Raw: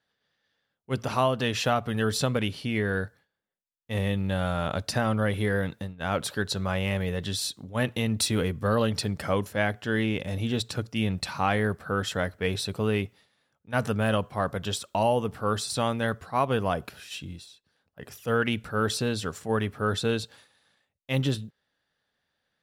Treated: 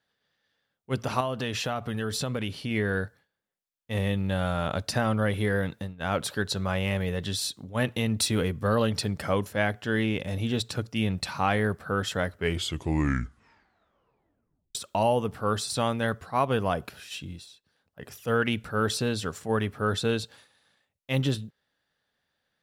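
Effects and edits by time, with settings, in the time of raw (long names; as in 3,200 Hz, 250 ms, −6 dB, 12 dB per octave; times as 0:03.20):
0:01.20–0:02.71: downward compressor 3 to 1, threshold −27 dBFS
0:12.26: tape stop 2.49 s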